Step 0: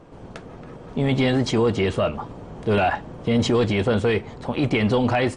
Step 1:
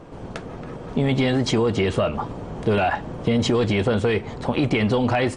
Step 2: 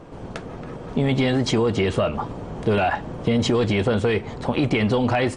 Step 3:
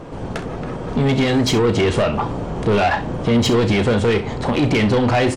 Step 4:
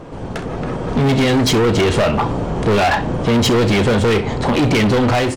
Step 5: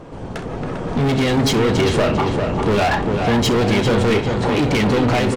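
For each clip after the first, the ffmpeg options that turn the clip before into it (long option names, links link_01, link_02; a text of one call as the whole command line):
ffmpeg -i in.wav -af "acompressor=threshold=-22dB:ratio=6,volume=5dB" out.wav
ffmpeg -i in.wav -af anull out.wav
ffmpeg -i in.wav -filter_complex "[0:a]asoftclip=type=tanh:threshold=-20dB,asplit=2[link_01][link_02];[link_02]aecho=0:1:34|65:0.266|0.178[link_03];[link_01][link_03]amix=inputs=2:normalize=0,volume=7.5dB" out.wav
ffmpeg -i in.wav -af "asoftclip=type=hard:threshold=-16.5dB,dynaudnorm=framelen=320:gausssize=3:maxgain=4.5dB" out.wav
ffmpeg -i in.wav -filter_complex "[0:a]asplit=2[link_01][link_02];[link_02]adelay=398,lowpass=frequency=3600:poles=1,volume=-5dB,asplit=2[link_03][link_04];[link_04]adelay=398,lowpass=frequency=3600:poles=1,volume=0.5,asplit=2[link_05][link_06];[link_06]adelay=398,lowpass=frequency=3600:poles=1,volume=0.5,asplit=2[link_07][link_08];[link_08]adelay=398,lowpass=frequency=3600:poles=1,volume=0.5,asplit=2[link_09][link_10];[link_10]adelay=398,lowpass=frequency=3600:poles=1,volume=0.5,asplit=2[link_11][link_12];[link_12]adelay=398,lowpass=frequency=3600:poles=1,volume=0.5[link_13];[link_01][link_03][link_05][link_07][link_09][link_11][link_13]amix=inputs=7:normalize=0,volume=-3dB" out.wav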